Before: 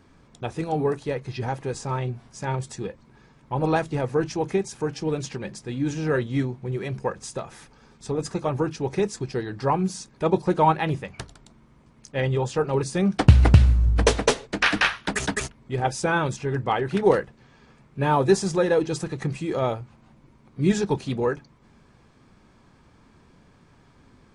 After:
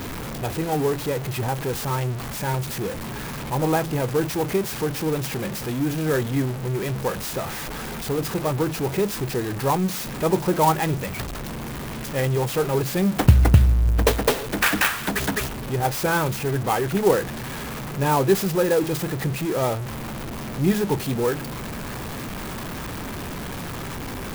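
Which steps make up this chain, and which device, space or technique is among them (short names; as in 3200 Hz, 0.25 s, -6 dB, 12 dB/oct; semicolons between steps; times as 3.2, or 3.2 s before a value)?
early CD player with a faulty converter (zero-crossing step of -25 dBFS; clock jitter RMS 0.04 ms); gain -1 dB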